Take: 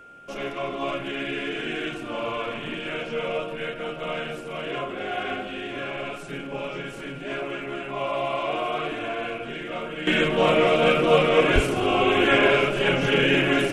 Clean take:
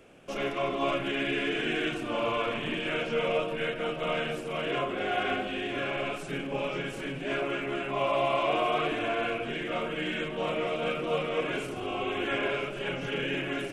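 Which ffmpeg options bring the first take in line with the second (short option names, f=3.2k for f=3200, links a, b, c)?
-filter_complex "[0:a]bandreject=f=1.4k:w=30,asplit=3[a][b][c];[a]afade=t=out:st=11.54:d=0.02[d];[b]highpass=f=140:w=0.5412,highpass=f=140:w=1.3066,afade=t=in:st=11.54:d=0.02,afade=t=out:st=11.66:d=0.02[e];[c]afade=t=in:st=11.66:d=0.02[f];[d][e][f]amix=inputs=3:normalize=0,asetnsamples=n=441:p=0,asendcmd='10.07 volume volume -11.5dB',volume=0dB"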